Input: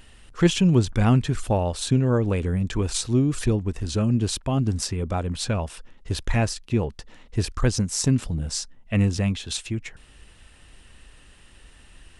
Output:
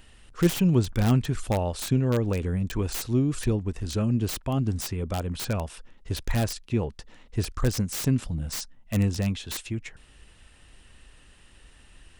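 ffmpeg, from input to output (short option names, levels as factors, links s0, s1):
-filter_complex "[0:a]asettb=1/sr,asplit=3[s0][s1][s2];[s0]atrim=end=8.234[s3];[s1]atrim=start=8.23:end=8.94,asetpts=PTS-STARTPTS,afade=t=in:d=0.004:c=qsin,afade=t=out:st=0.706:d=0.004:c=qsin,equalizer=f=410:t=o:w=0.25:g=-11.5[s4];[s2]atrim=start=8.936[s5];[s3][s4]acrossfade=d=0.004:c1=hsin:c2=qsin[s6];[s6][s5]acrossfade=d=0.004:c1=qsin:c2=hsin,acrossover=split=770[s7][s8];[s8]aeval=exprs='(mod(14.1*val(0)+1,2)-1)/14.1':c=same[s9];[s7][s9]amix=inputs=2:normalize=0,volume=0.708"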